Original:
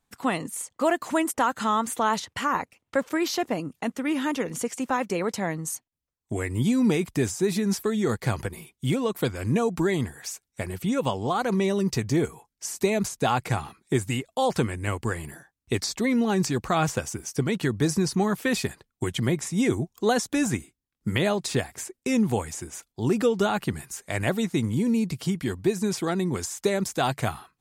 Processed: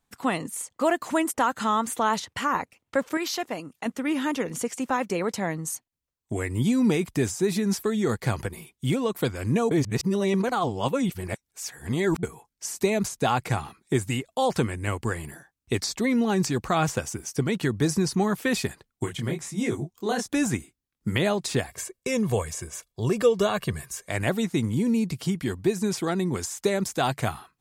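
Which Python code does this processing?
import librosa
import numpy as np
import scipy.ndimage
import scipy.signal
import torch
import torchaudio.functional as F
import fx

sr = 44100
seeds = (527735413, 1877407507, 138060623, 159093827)

y = fx.low_shelf(x, sr, hz=480.0, db=-9.0, at=(3.17, 3.86))
y = fx.detune_double(y, sr, cents=fx.line((19.05, 28.0), (20.26, 45.0)), at=(19.05, 20.26), fade=0.02)
y = fx.comb(y, sr, ms=1.8, depth=0.6, at=(21.67, 24.09))
y = fx.edit(y, sr, fx.reverse_span(start_s=9.71, length_s=2.52), tone=tone)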